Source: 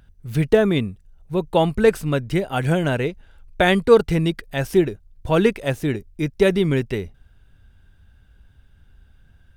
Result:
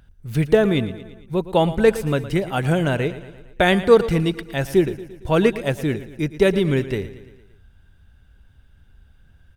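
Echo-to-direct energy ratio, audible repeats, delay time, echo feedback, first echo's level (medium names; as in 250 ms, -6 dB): -13.5 dB, 4, 114 ms, 56%, -15.0 dB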